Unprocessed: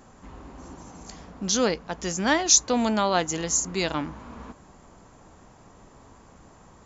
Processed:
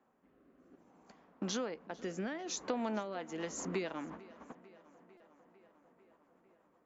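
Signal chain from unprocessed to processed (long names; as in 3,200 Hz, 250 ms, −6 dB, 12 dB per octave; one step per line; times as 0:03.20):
noise gate −38 dBFS, range −18 dB
three-way crossover with the lows and the highs turned down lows −22 dB, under 190 Hz, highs −17 dB, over 2,900 Hz
downward compressor 12 to 1, threshold −34 dBFS, peak gain reduction 18 dB
rotating-speaker cabinet horn 0.6 Hz, later 8 Hz, at 0:02.79
tape delay 449 ms, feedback 77%, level −19 dB, low-pass 4,300 Hz
buffer that repeats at 0:05.17, samples 128, times 10
level +2 dB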